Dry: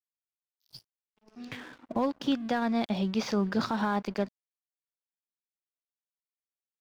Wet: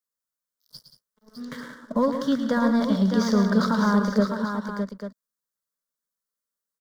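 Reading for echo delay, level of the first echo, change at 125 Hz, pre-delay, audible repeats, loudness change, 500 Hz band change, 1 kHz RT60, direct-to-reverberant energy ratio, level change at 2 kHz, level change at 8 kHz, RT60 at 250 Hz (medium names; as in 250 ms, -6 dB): 111 ms, -9.0 dB, +9.5 dB, no reverb, 4, +7.0 dB, +7.0 dB, no reverb, no reverb, +6.5 dB, no reading, no reverb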